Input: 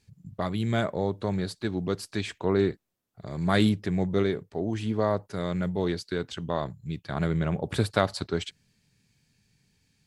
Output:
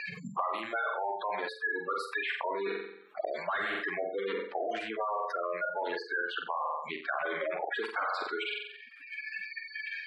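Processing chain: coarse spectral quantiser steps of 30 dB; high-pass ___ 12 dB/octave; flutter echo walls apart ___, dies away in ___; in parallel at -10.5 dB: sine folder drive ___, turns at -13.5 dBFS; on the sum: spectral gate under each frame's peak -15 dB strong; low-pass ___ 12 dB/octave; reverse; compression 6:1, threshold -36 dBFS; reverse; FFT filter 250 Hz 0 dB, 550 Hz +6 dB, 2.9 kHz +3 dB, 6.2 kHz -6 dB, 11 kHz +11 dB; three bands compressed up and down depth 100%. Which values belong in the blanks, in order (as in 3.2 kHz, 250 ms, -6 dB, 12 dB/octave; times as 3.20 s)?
1.1 kHz, 7.8 m, 0.53 s, 16 dB, 2.6 kHz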